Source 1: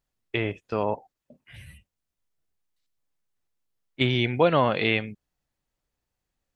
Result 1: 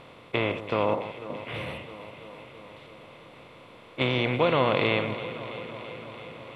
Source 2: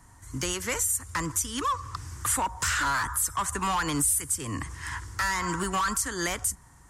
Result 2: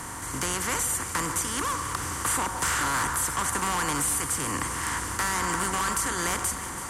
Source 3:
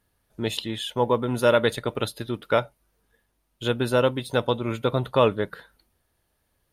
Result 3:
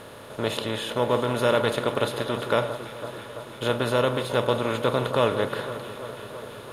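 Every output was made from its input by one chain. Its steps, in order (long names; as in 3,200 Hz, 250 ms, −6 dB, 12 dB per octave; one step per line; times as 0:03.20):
compressor on every frequency bin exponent 0.4
delay that swaps between a low-pass and a high-pass 166 ms, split 1,600 Hz, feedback 86%, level −12 dB
level −6 dB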